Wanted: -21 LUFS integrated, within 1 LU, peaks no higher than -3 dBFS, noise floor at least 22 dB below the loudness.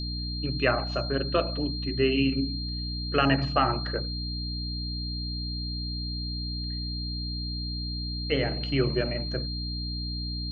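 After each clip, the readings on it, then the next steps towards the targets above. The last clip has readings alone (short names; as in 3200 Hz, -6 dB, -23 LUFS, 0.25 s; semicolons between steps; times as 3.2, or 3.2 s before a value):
hum 60 Hz; harmonics up to 300 Hz; hum level -31 dBFS; steady tone 4200 Hz; tone level -35 dBFS; loudness -29.0 LUFS; peak -9.5 dBFS; loudness target -21.0 LUFS
-> notches 60/120/180/240/300 Hz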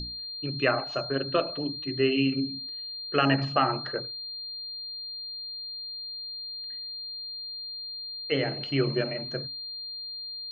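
hum none; steady tone 4200 Hz; tone level -35 dBFS
-> notch 4200 Hz, Q 30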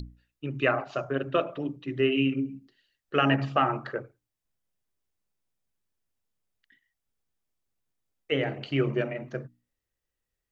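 steady tone none; loudness -28.5 LUFS; peak -9.5 dBFS; loudness target -21.0 LUFS
-> gain +7.5 dB; limiter -3 dBFS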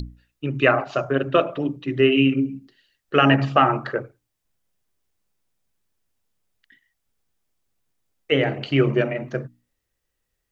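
loudness -21.0 LUFS; peak -3.0 dBFS; noise floor -78 dBFS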